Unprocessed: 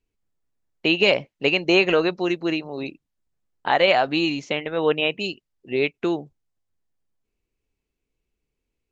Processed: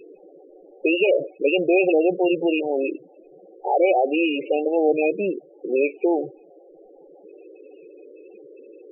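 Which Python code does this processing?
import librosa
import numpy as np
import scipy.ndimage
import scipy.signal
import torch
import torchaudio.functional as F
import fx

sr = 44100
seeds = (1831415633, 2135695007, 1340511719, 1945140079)

y = fx.bin_compress(x, sr, power=0.4)
y = fx.lowpass(y, sr, hz=fx.line((4.55, 3800.0), (5.74, 1900.0)), slope=24, at=(4.55, 5.74), fade=0.02)
y = fx.spec_topn(y, sr, count=8)
y = y * 10.0 ** (-1.5 / 20.0)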